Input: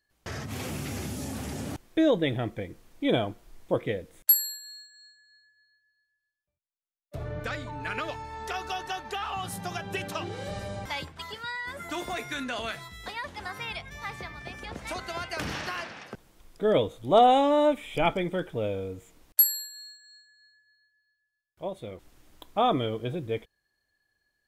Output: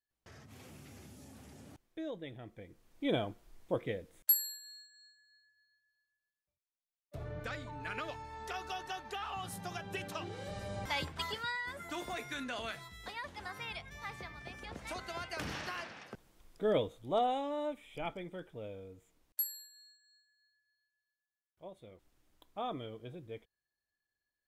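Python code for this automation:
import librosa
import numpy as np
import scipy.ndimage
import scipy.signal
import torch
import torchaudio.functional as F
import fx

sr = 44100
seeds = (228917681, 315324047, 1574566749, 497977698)

y = fx.gain(x, sr, db=fx.line((2.41, -19.0), (3.05, -7.5), (10.55, -7.5), (11.19, 2.0), (11.82, -7.0), (16.72, -7.0), (17.41, -15.0)))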